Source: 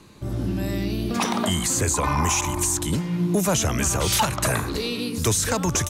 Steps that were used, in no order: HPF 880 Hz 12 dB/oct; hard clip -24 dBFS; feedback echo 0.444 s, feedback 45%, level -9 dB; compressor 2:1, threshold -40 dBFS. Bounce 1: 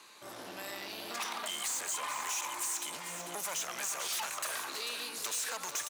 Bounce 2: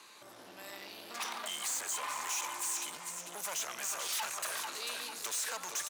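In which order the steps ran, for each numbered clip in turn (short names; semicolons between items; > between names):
hard clip > HPF > compressor > feedback echo; feedback echo > hard clip > compressor > HPF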